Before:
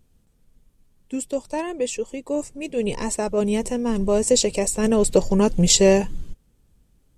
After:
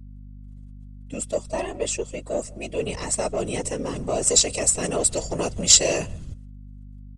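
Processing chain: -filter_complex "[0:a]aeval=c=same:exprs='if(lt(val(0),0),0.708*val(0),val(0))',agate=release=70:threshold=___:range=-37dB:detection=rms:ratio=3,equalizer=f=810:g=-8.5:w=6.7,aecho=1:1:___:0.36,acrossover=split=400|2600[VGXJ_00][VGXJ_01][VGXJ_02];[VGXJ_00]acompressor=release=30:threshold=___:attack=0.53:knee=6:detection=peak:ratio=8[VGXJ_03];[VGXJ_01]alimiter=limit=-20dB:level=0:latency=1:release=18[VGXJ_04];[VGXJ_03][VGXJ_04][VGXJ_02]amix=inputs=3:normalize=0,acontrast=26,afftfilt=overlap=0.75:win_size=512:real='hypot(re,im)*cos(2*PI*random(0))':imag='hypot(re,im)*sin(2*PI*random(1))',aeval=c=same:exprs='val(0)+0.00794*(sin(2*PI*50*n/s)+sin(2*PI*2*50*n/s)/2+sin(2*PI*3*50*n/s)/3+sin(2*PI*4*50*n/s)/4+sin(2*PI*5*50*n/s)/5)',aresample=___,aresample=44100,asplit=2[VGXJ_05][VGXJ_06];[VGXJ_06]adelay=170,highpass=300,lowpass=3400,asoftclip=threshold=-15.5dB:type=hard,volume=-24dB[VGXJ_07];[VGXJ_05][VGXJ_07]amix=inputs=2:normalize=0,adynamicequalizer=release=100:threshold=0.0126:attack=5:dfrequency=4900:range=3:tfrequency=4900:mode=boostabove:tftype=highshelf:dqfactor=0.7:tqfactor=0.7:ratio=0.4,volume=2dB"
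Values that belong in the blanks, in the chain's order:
-53dB, 1.5, -32dB, 22050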